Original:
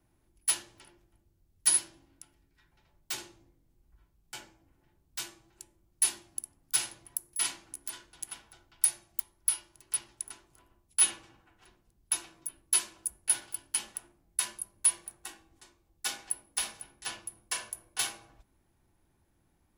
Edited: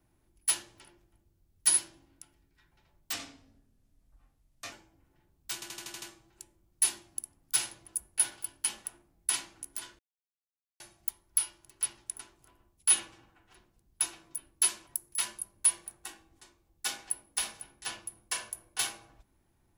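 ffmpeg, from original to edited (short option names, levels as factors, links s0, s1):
-filter_complex "[0:a]asplit=15[s0][s1][s2][s3][s4][s5][s6][s7][s8][s9][s10][s11][s12][s13][s14];[s0]atrim=end=3.124[s15];[s1]atrim=start=3.12:end=4.4,asetpts=PTS-STARTPTS,asetrate=35280,aresample=44100[s16];[s2]atrim=start=4.396:end=5.302[s17];[s3]atrim=start=5.218:end=5.302[s18];[s4]atrim=start=5.218:end=5.302[s19];[s5]atrim=start=5.218:end=5.302[s20];[s6]atrim=start=5.218:end=5.302[s21];[s7]atrim=start=5.218:end=5.302[s22];[s8]atrim=start=5.218:end=7.082[s23];[s9]atrim=start=12.978:end=14.412[s24];[s10]atrim=start=7.418:end=8.1,asetpts=PTS-STARTPTS,afade=t=out:st=0.678:d=0.004:c=hsin[s25];[s11]atrim=start=8.1:end=8.91,asetpts=PTS-STARTPTS,volume=0[s26];[s12]atrim=start=8.91:end=12.982,asetpts=PTS-STARTPTS,afade=t=in:d=0.004:c=hsin[s27];[s13]atrim=start=7.078:end=7.422[s28];[s14]atrim=start=14.408[s29];[s15][s16]acrossfade=d=0.004:c1=hsin:c2=hsin[s30];[s30][s17]acrossfade=d=0.004:c1=hsin:c2=hsin[s31];[s31][s18]acrossfade=d=0.004:c1=hsin:c2=hsin[s32];[s32][s19]acrossfade=d=0.004:c1=hsin:c2=hsin[s33];[s33][s20]acrossfade=d=0.004:c1=hsin:c2=hsin[s34];[s34][s21]acrossfade=d=0.004:c1=hsin:c2=hsin[s35];[s35][s22]acrossfade=d=0.004:c1=hsin:c2=hsin[s36];[s36][s23]acrossfade=d=0.004:c1=hsin:c2=hsin[s37];[s37][s24]acrossfade=d=0.004:c1=hsin:c2=hsin[s38];[s25][s26][s27]concat=n=3:v=0:a=1[s39];[s38][s39]acrossfade=d=0.004:c1=hsin:c2=hsin[s40];[s40][s28]acrossfade=d=0.004:c1=hsin:c2=hsin[s41];[s41][s29]acrossfade=d=0.004:c1=hsin:c2=hsin"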